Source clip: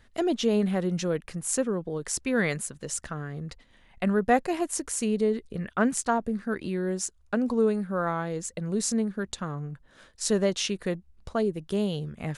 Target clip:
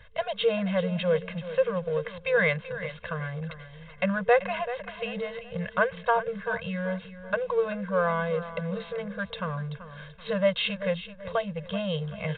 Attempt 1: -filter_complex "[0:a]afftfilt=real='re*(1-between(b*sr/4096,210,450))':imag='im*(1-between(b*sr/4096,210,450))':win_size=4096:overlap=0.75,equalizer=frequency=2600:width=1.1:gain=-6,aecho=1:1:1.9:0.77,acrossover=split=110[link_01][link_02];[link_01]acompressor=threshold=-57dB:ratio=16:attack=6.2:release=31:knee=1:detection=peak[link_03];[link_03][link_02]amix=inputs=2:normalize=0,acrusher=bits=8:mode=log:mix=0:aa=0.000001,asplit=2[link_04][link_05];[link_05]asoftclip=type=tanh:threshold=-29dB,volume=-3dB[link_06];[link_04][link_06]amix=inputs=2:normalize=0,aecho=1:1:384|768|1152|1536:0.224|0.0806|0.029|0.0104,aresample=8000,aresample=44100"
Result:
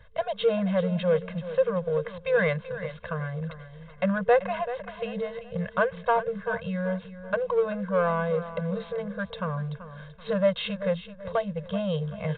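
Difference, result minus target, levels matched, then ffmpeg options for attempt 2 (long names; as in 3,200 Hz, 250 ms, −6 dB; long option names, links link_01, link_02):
soft clipping: distortion −5 dB; 2,000 Hz band −3.5 dB
-filter_complex "[0:a]afftfilt=real='re*(1-between(b*sr/4096,210,450))':imag='im*(1-between(b*sr/4096,210,450))':win_size=4096:overlap=0.75,equalizer=frequency=2600:width=1.1:gain=2.5,aecho=1:1:1.9:0.77,acrossover=split=110[link_01][link_02];[link_01]acompressor=threshold=-57dB:ratio=16:attack=6.2:release=31:knee=1:detection=peak[link_03];[link_03][link_02]amix=inputs=2:normalize=0,acrusher=bits=8:mode=log:mix=0:aa=0.000001,asplit=2[link_04][link_05];[link_05]asoftclip=type=tanh:threshold=-41dB,volume=-3dB[link_06];[link_04][link_06]amix=inputs=2:normalize=0,aecho=1:1:384|768|1152|1536:0.224|0.0806|0.029|0.0104,aresample=8000,aresample=44100"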